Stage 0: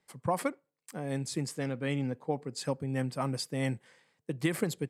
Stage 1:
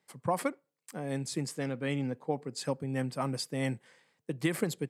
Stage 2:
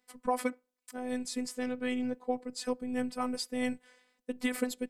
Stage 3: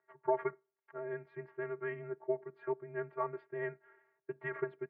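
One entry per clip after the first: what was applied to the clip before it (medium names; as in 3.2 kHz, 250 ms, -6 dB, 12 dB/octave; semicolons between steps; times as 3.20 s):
high-pass 110 Hz
robot voice 250 Hz; trim +1.5 dB
vibrato 13 Hz 21 cents; mistuned SSB -110 Hz 430–2000 Hz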